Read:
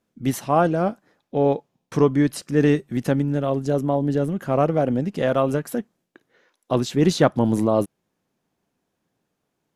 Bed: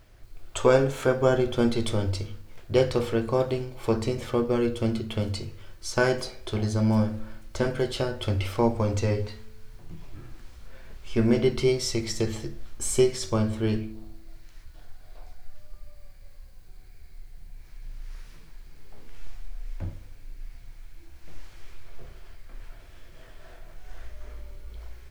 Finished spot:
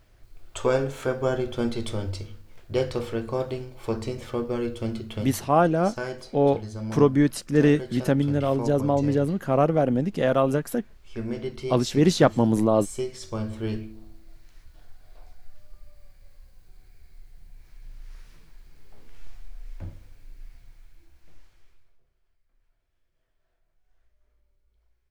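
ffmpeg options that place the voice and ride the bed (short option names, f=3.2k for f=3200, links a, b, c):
-filter_complex "[0:a]adelay=5000,volume=-1dB[a];[1:a]volume=2.5dB,afade=t=out:st=5.2:d=0.29:silence=0.501187,afade=t=in:st=13.05:d=0.61:silence=0.501187,afade=t=out:st=20.41:d=1.59:silence=0.0595662[b];[a][b]amix=inputs=2:normalize=0"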